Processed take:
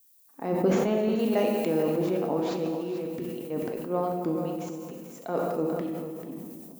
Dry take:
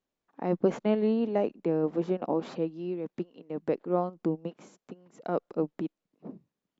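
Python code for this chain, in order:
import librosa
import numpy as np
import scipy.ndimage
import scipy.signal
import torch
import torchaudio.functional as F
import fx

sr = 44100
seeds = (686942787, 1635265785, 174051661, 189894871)

y = fx.dmg_noise_colour(x, sr, seeds[0], colour='violet', level_db=-67.0)
y = fx.high_shelf(y, sr, hz=2100.0, db=11.5, at=(1.19, 1.83))
y = fx.over_compress(y, sr, threshold_db=-32.0, ratio=-0.5, at=(3.1, 3.87))
y = fx.high_shelf(y, sr, hz=4700.0, db=7.5)
y = y + 10.0 ** (-10.5 / 20.0) * np.pad(y, (int(439 * sr / 1000.0), 0))[:len(y)]
y = fx.rev_gated(y, sr, seeds[1], gate_ms=480, shape='falling', drr_db=2.0)
y = fx.sustainer(y, sr, db_per_s=23.0)
y = F.gain(torch.from_numpy(y), -1.5).numpy()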